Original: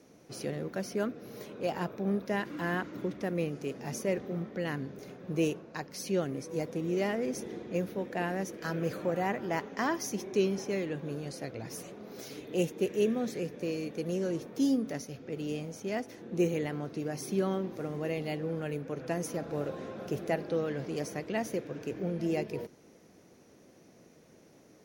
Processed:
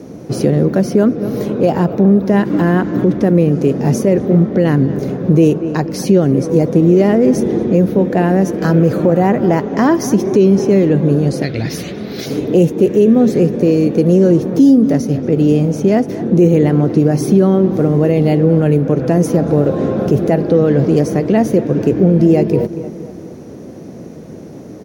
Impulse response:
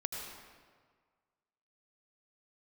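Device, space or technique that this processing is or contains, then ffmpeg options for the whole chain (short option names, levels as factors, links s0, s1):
mastering chain: -filter_complex "[0:a]asettb=1/sr,asplit=3[s0][s1][s2];[s0]atrim=end=11.424[s3];[s1]atrim=start=11.42:end=12.26,asetpts=PTS-STARTPTS,afade=t=in:d=0.004:c=qsin,afade=t=out:st=0.836:d=0.004:c=qsin,equalizer=f=125:t=o:w=1:g=-4,equalizer=f=250:t=o:w=1:g=-4,equalizer=f=500:t=o:w=1:g=-6,equalizer=f=1000:t=o:w=1:g=-6,equalizer=f=2000:t=o:w=1:g=7,equalizer=f=4000:t=o:w=1:g=12,equalizer=f=8000:t=o:w=1:g=-7[s4];[s2]atrim=start=12.256[s5];[s3][s4]acrossfade=d=0.004:c1=hsin:c2=qsin[s6];[s6][s5]acrossfade=d=0.004:c1=qsin:c2=hsin,highpass=53,equalizer=f=2400:t=o:w=0.77:g=-2,asplit=2[s7][s8];[s8]adelay=234,lowpass=f=2700:p=1,volume=0.133,asplit=2[s9][s10];[s10]adelay=234,lowpass=f=2700:p=1,volume=0.5,asplit=2[s11][s12];[s12]adelay=234,lowpass=f=2700:p=1,volume=0.5,asplit=2[s13][s14];[s14]adelay=234,lowpass=f=2700:p=1,volume=0.5[s15];[s7][s9][s11][s13][s15]amix=inputs=5:normalize=0,acompressor=threshold=0.0112:ratio=1.5,tiltshelf=f=700:g=7.5,alimiter=level_in=14.1:limit=0.891:release=50:level=0:latency=1,volume=0.891"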